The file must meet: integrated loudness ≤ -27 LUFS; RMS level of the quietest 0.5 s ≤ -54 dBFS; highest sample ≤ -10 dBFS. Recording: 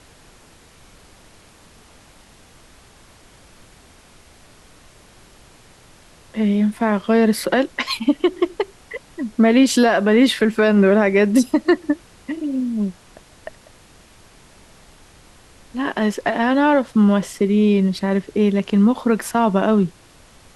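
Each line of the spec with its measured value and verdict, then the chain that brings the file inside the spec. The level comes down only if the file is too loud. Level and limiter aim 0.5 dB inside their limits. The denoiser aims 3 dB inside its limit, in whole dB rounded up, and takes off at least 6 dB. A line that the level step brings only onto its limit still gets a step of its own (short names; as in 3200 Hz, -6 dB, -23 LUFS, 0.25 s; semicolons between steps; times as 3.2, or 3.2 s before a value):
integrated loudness -18.0 LUFS: fail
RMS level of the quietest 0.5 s -49 dBFS: fail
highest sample -4.0 dBFS: fail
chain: gain -9.5 dB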